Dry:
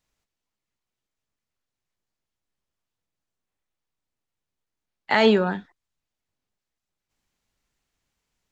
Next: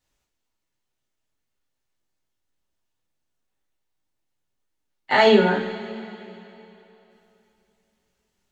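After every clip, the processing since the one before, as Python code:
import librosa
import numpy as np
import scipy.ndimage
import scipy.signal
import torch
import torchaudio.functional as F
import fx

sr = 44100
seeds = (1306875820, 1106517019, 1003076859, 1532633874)

y = fx.rev_double_slope(x, sr, seeds[0], early_s=0.36, late_s=3.1, knee_db=-18, drr_db=-5.5)
y = F.gain(torch.from_numpy(y), -3.5).numpy()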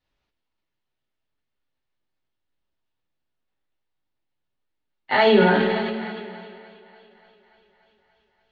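y = scipy.signal.sosfilt(scipy.signal.butter(4, 4400.0, 'lowpass', fs=sr, output='sos'), x)
y = fx.echo_thinned(y, sr, ms=290, feedback_pct=71, hz=200.0, wet_db=-22.0)
y = fx.sustainer(y, sr, db_per_s=25.0)
y = F.gain(torch.from_numpy(y), -1.5).numpy()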